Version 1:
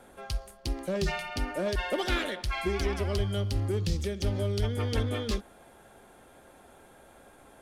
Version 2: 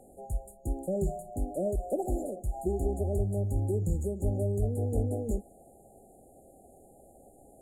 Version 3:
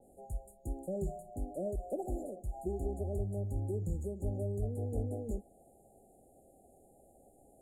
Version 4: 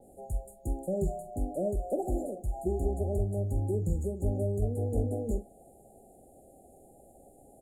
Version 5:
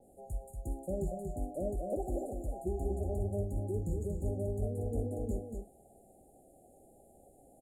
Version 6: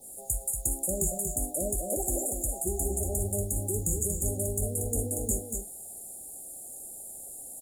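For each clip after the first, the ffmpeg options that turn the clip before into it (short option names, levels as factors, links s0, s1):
-af "afftfilt=real='re*(1-between(b*sr/4096,820,6700))':imag='im*(1-between(b*sr/4096,820,6700))':win_size=4096:overlap=0.75"
-af "adynamicequalizer=threshold=0.00224:dfrequency=1700:dqfactor=0.7:tfrequency=1700:tqfactor=0.7:attack=5:release=100:ratio=0.375:range=1.5:mode=cutabove:tftype=highshelf,volume=0.473"
-filter_complex "[0:a]asplit=2[s0][s1];[s1]adelay=43,volume=0.237[s2];[s0][s2]amix=inputs=2:normalize=0,volume=2"
-af "aecho=1:1:235:0.562,volume=0.531"
-af "aexciter=amount=6.6:drive=9.7:freq=3200,volume=1.33"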